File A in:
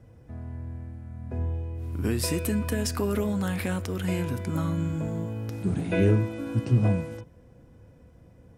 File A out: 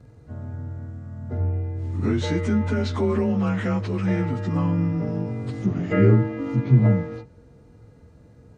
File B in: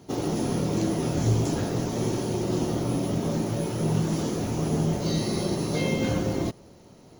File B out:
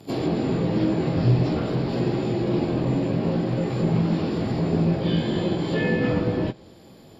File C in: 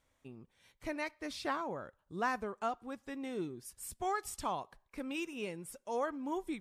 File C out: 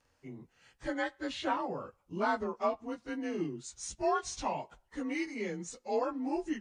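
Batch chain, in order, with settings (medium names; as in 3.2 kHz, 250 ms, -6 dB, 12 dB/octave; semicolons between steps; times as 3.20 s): frequency axis rescaled in octaves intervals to 91%; low-pass that closes with the level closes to 2.9 kHz, closed at -26 dBFS; trim +6 dB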